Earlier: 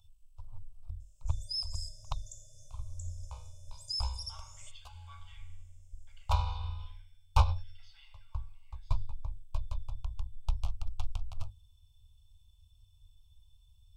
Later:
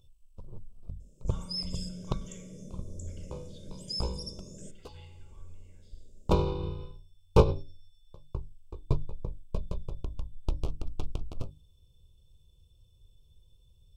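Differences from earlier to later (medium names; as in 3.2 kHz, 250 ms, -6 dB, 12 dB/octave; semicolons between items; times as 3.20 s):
speech: entry -3.00 s; master: remove elliptic band-stop 100–760 Hz, stop band 50 dB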